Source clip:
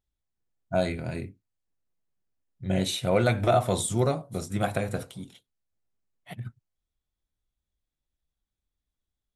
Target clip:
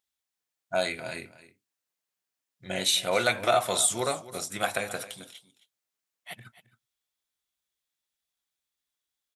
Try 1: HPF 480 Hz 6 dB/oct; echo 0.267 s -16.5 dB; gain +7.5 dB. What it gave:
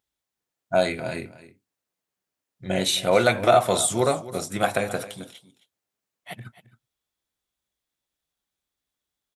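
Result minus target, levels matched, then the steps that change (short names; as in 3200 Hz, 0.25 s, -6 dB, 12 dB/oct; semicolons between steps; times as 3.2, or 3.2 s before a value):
500 Hz band +3.0 dB
change: HPF 1700 Hz 6 dB/oct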